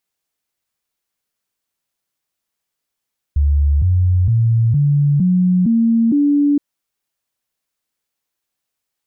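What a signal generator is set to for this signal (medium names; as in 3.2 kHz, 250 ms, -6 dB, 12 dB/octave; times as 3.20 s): stepped sine 72.1 Hz up, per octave 3, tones 7, 0.46 s, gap 0.00 s -10.5 dBFS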